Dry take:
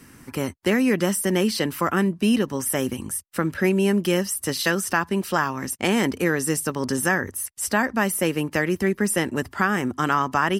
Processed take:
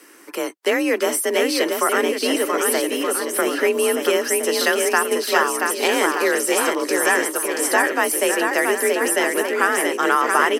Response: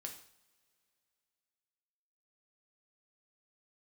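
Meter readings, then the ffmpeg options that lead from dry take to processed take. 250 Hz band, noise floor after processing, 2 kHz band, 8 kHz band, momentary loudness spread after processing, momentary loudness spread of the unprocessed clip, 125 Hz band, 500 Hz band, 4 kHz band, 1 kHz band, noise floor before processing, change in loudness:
−3.0 dB, −33 dBFS, +5.5 dB, +5.5 dB, 3 LU, 6 LU, below −20 dB, +6.0 dB, +6.0 dB, +5.0 dB, −51 dBFS, +4.0 dB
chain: -af "highpass=frequency=290:width=0.5412,highpass=frequency=290:width=1.3066,aecho=1:1:680|1224|1659|2007|2286:0.631|0.398|0.251|0.158|0.1,afreqshift=43,volume=3.5dB"

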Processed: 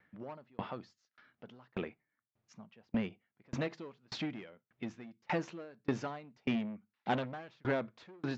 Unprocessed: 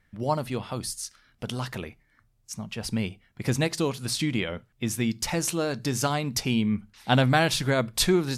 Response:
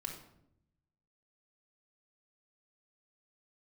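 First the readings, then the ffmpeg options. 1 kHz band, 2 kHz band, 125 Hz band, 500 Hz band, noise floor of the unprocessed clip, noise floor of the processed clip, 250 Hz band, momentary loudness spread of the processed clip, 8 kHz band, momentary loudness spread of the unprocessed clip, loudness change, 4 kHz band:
−11.5 dB, −13.0 dB, −16.5 dB, −11.5 dB, −67 dBFS, below −85 dBFS, −11.0 dB, 18 LU, −30.0 dB, 13 LU, −12.5 dB, −19.0 dB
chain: -af "aresample=16000,asoftclip=type=tanh:threshold=-25dB,aresample=44100,highpass=200,lowpass=2200,aeval=exprs='val(0)*pow(10,-35*if(lt(mod(1.7*n/s,1),2*abs(1.7)/1000),1-mod(1.7*n/s,1)/(2*abs(1.7)/1000),(mod(1.7*n/s,1)-2*abs(1.7)/1000)/(1-2*abs(1.7)/1000))/20)':channel_layout=same,volume=3.5dB"

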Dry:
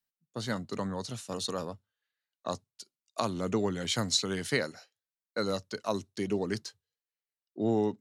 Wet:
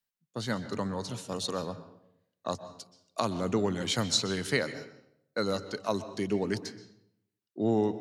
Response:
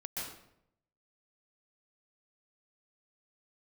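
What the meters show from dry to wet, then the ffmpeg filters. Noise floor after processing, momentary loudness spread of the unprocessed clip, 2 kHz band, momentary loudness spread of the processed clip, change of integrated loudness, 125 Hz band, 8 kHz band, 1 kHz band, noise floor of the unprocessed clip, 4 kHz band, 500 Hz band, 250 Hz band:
below −85 dBFS, 14 LU, +1.5 dB, 16 LU, +1.0 dB, +1.5 dB, 0.0 dB, +1.5 dB, below −85 dBFS, +1.0 dB, +1.0 dB, +1.5 dB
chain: -filter_complex "[0:a]asplit=2[link_01][link_02];[1:a]atrim=start_sample=2205,lowpass=6000[link_03];[link_02][link_03]afir=irnorm=-1:irlink=0,volume=-11.5dB[link_04];[link_01][link_04]amix=inputs=2:normalize=0"

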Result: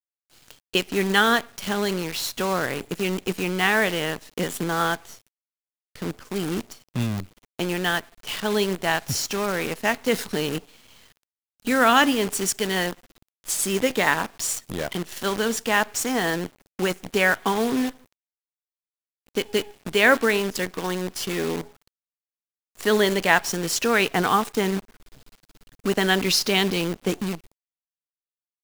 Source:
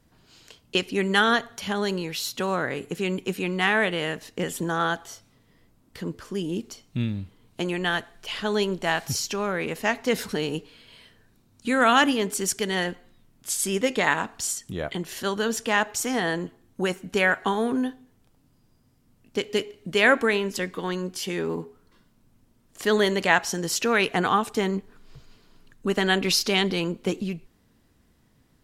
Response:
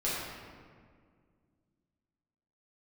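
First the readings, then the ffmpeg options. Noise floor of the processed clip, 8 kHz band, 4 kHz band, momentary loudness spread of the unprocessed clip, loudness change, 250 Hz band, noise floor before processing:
below −85 dBFS, +2.5 dB, +2.0 dB, 11 LU, +1.5 dB, +1.5 dB, −63 dBFS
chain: -af "agate=range=-33dB:threshold=-53dB:ratio=3:detection=peak,acrusher=bits=6:dc=4:mix=0:aa=0.000001,volume=1.5dB"

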